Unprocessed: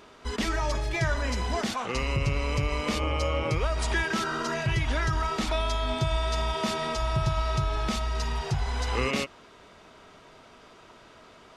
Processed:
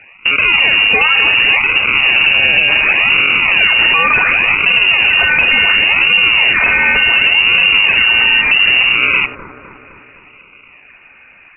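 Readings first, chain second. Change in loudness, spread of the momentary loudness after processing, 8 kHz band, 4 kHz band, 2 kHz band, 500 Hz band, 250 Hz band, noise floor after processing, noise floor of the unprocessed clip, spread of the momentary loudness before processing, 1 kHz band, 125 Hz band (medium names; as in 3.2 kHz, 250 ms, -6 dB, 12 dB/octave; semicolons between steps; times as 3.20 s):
+20.5 dB, 2 LU, under -40 dB, +24.0 dB, +26.0 dB, +4.0 dB, +3.0 dB, -43 dBFS, -53 dBFS, 3 LU, +10.5 dB, -5.0 dB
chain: gate -40 dBFS, range -16 dB; peaking EQ 310 Hz +11 dB 0.75 oct; in parallel at -1 dB: compression, threshold -44 dBFS, peak gain reduction 22.5 dB; on the sum: decimation with a swept rate 25×, swing 160% 0.69 Hz; on a send: feedback echo behind a high-pass 256 ms, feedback 58%, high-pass 2.2 kHz, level -10 dB; on the sum: frequency inversion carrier 2.8 kHz; loudness maximiser +18.5 dB; trim -1 dB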